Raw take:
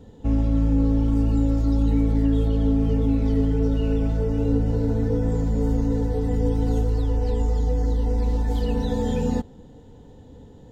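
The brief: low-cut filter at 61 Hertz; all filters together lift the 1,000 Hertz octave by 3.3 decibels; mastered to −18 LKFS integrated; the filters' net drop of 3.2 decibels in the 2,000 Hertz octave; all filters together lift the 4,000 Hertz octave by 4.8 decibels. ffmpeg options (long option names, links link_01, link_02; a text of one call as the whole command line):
ffmpeg -i in.wav -af "highpass=61,equalizer=frequency=1000:width_type=o:gain=5.5,equalizer=frequency=2000:width_type=o:gain=-8.5,equalizer=frequency=4000:width_type=o:gain=8.5,volume=6dB" out.wav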